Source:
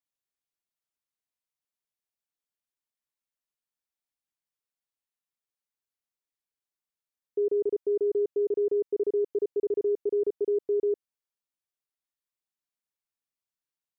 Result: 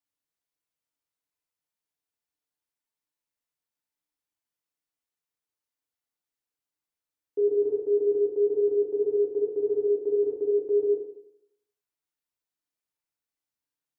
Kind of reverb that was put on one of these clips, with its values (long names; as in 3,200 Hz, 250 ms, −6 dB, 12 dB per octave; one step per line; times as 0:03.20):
feedback delay network reverb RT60 0.76 s, low-frequency decay 1×, high-frequency decay 0.5×, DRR 0 dB
level −1.5 dB